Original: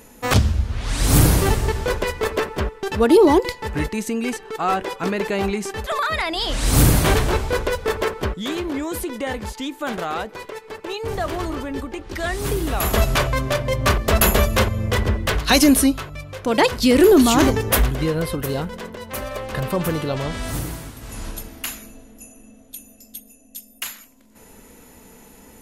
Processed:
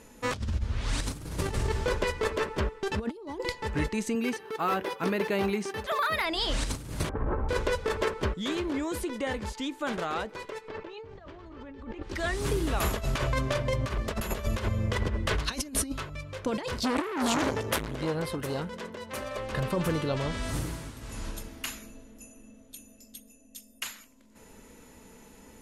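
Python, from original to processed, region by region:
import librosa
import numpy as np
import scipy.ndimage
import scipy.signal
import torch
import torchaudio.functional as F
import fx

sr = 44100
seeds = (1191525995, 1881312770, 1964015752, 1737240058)

y = fx.chain(x, sr, fx.highpass(hz=100.0, slope=12),
    fx.resample_bad(factor=3, down='filtered', up='hold'), at=(4.15, 6.25))
y = fx.chain(y, sr, fx.lowpass(hz=1400.0, slope=24),
    fx.comb(ms=3.8, depth=0.36), at=(7.09, 7.49))
y = fx.chain(y, sr, fx.air_absorb(metres=170.0),
    fx.over_compress(threshold_db=-38.0, ratio=-1.0), at=(10.68, 12.03))
y = fx.chain(y, sr, fx.highpass(hz=120.0, slope=6),
    fx.transformer_sat(knee_hz=1300.0), at=(16.79, 19.38))
y = scipy.signal.sosfilt(scipy.signal.butter(2, 9300.0, 'lowpass', fs=sr, output='sos'), y)
y = fx.notch(y, sr, hz=740.0, q=12.0)
y = fx.over_compress(y, sr, threshold_db=-20.0, ratio=-0.5)
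y = F.gain(torch.from_numpy(y), -7.5).numpy()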